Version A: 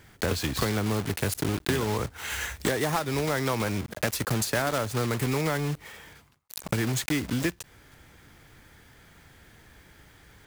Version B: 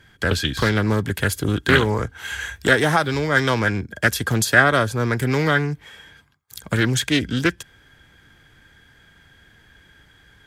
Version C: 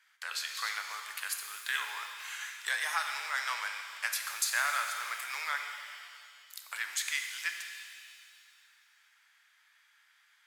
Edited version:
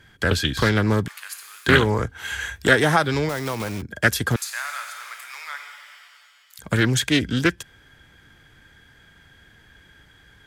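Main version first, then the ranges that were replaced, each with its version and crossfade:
B
0:01.08–0:01.66: punch in from C
0:03.29–0:03.82: punch in from A
0:04.36–0:06.59: punch in from C

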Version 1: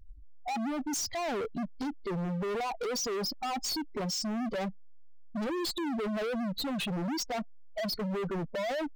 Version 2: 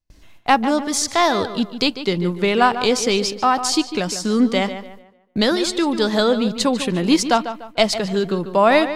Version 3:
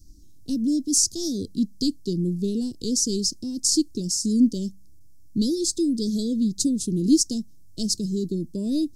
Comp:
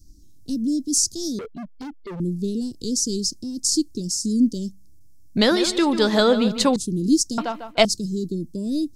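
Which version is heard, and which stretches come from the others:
3
0:01.39–0:02.20: punch in from 1
0:05.37–0:06.76: punch in from 2
0:07.38–0:07.85: punch in from 2

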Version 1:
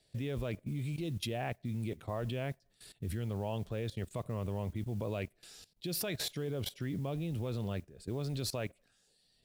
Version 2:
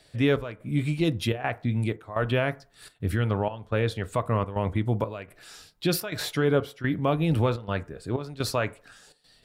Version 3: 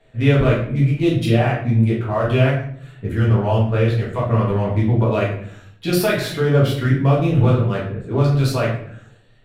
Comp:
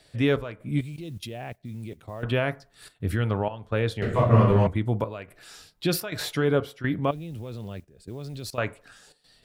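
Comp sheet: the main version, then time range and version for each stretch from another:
2
0:00.81–0:02.23: punch in from 1
0:04.02–0:04.67: punch in from 3
0:07.11–0:08.58: punch in from 1

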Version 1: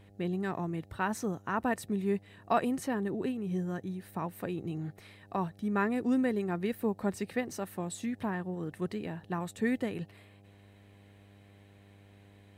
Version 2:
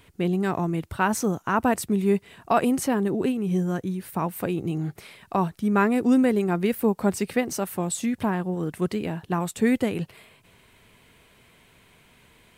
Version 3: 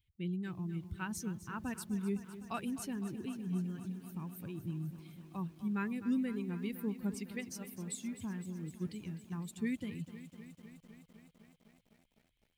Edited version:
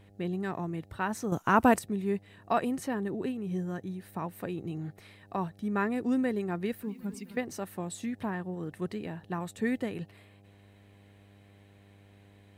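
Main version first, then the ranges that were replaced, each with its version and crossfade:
1
0:01.32–0:01.79: punch in from 2
0:06.83–0:07.37: punch in from 3

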